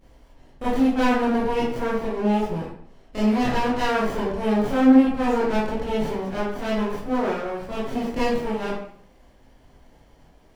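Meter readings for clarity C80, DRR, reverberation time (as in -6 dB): 5.0 dB, -10.0 dB, 0.65 s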